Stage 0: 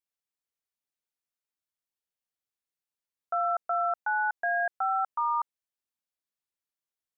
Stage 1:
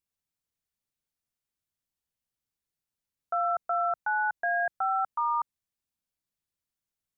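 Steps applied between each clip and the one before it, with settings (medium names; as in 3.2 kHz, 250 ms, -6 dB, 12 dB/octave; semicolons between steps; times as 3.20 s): tone controls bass +12 dB, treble +2 dB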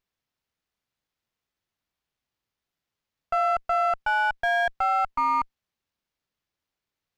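sliding maximum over 5 samples; trim +4.5 dB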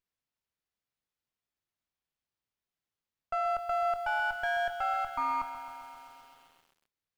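bit-crushed delay 132 ms, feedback 80%, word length 8-bit, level -11 dB; trim -7.5 dB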